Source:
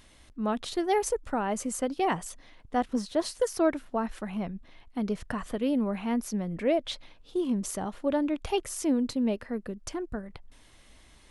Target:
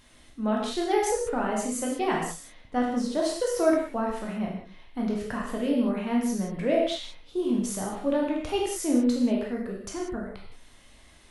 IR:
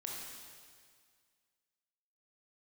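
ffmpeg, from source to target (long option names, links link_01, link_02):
-filter_complex "[1:a]atrim=start_sample=2205,afade=type=out:start_time=0.41:duration=0.01,atrim=end_sample=18522,asetrate=79380,aresample=44100[link_01];[0:a][link_01]afir=irnorm=-1:irlink=0,volume=8.5dB"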